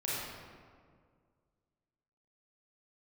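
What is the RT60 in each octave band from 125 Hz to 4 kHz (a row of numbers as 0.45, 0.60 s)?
2.3, 2.2, 2.1, 1.8, 1.4, 1.0 s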